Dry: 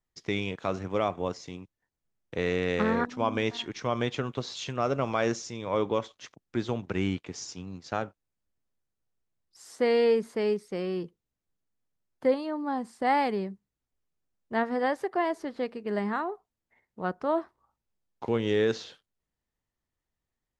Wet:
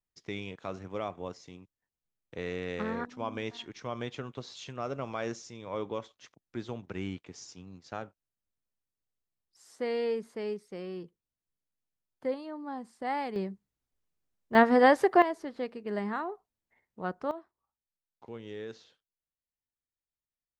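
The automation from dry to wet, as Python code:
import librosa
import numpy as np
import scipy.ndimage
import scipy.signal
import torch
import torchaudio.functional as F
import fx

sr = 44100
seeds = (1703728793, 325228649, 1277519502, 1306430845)

y = fx.gain(x, sr, db=fx.steps((0.0, -8.0), (13.36, -1.0), (14.55, 7.0), (15.22, -3.5), (17.31, -16.0)))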